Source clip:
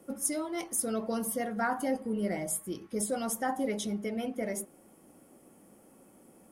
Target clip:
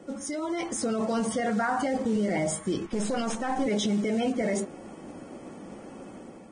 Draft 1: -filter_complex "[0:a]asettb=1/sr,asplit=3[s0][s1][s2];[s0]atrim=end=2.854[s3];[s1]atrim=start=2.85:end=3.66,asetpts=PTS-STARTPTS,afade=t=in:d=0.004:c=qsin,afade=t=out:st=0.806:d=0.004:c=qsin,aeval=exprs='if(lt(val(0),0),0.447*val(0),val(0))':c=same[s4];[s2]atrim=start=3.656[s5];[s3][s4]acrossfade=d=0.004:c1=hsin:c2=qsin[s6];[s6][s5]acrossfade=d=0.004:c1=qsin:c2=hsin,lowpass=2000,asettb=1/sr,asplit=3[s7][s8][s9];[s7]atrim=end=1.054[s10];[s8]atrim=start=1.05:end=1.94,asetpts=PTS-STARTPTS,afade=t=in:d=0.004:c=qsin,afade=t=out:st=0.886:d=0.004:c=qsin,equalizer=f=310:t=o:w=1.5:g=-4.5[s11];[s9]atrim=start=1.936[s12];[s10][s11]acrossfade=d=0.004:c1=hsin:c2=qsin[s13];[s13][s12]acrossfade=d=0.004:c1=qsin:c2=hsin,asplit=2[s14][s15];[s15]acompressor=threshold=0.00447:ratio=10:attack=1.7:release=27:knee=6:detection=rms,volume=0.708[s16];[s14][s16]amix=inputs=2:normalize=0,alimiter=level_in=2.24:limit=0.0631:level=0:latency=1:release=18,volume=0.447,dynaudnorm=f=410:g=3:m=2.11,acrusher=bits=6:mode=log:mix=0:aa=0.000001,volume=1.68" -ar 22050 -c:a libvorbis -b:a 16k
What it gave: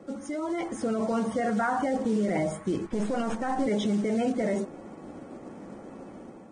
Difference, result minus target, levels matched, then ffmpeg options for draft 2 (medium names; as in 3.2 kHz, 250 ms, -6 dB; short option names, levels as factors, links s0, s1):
4 kHz band -5.5 dB
-filter_complex "[0:a]asettb=1/sr,asplit=3[s0][s1][s2];[s0]atrim=end=2.854[s3];[s1]atrim=start=2.85:end=3.66,asetpts=PTS-STARTPTS,afade=t=in:d=0.004:c=qsin,afade=t=out:st=0.806:d=0.004:c=qsin,aeval=exprs='if(lt(val(0),0),0.447*val(0),val(0))':c=same[s4];[s2]atrim=start=3.656[s5];[s3][s4]acrossfade=d=0.004:c1=hsin:c2=qsin[s6];[s6][s5]acrossfade=d=0.004:c1=qsin:c2=hsin,lowpass=4500,asettb=1/sr,asplit=3[s7][s8][s9];[s7]atrim=end=1.054[s10];[s8]atrim=start=1.05:end=1.94,asetpts=PTS-STARTPTS,afade=t=in:d=0.004:c=qsin,afade=t=out:st=0.886:d=0.004:c=qsin,equalizer=f=310:t=o:w=1.5:g=-4.5[s11];[s9]atrim=start=1.936[s12];[s10][s11]acrossfade=d=0.004:c1=hsin:c2=qsin[s13];[s13][s12]acrossfade=d=0.004:c1=qsin:c2=hsin,asplit=2[s14][s15];[s15]acompressor=threshold=0.00447:ratio=10:attack=1.7:release=27:knee=6:detection=rms,volume=0.708[s16];[s14][s16]amix=inputs=2:normalize=0,alimiter=level_in=2.24:limit=0.0631:level=0:latency=1:release=18,volume=0.447,dynaudnorm=f=410:g=3:m=2.11,acrusher=bits=6:mode=log:mix=0:aa=0.000001,volume=1.68" -ar 22050 -c:a libvorbis -b:a 16k